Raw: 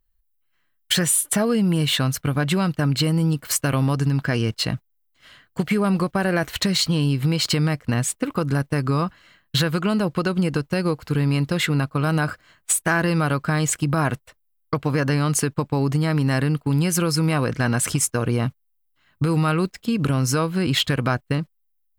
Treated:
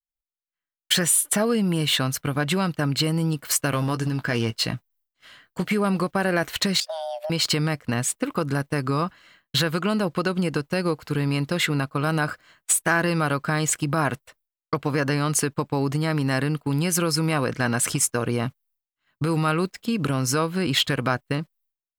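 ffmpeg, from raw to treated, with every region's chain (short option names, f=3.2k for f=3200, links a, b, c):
-filter_complex "[0:a]asettb=1/sr,asplit=3[a][b][c];[a]atrim=end=3.734[d];[b]atrim=start=3.73:end=5.72,asetpts=PTS-STARTPTS,afade=t=in:d=0.004:c=qsin,afade=t=out:st=1.986:d=0.004:c=qsin,asplit=2[e][f];[f]adelay=17,volume=-11dB[g];[e][g]amix=inputs=2:normalize=0,atrim=end_sample=87759,asoftclip=type=hard:threshold=-14.5dB[h];[c]atrim=start=5.716[i];[d][h]acrossfade=d=0.004:c1=hsin:c2=qsin[j];[j][i]acrossfade=d=0.004:c1=qsin:c2=hsin,asettb=1/sr,asplit=3[k][l][m];[k]atrim=end=6.804[n];[l]atrim=start=6.8:end=7.3,asetpts=PTS-STARTPTS,afade=t=in:d=0.004:c=qsin,afade=t=out:st=0.496:d=0.004:c=qsin,agate=range=-14dB:threshold=-24dB:ratio=16:release=100:detection=peak,acompressor=threshold=-30dB:ratio=3:attack=3.2:release=140:knee=1:detection=peak,afreqshift=470[o];[m]atrim=start=7.296[p];[n][o]acrossfade=d=0.004:c1=hsin:c2=qsin[q];[q][p]acrossfade=d=0.004:c1=qsin:c2=hsin,agate=range=-33dB:threshold=-54dB:ratio=3:detection=peak,lowshelf=f=140:g=-9.5"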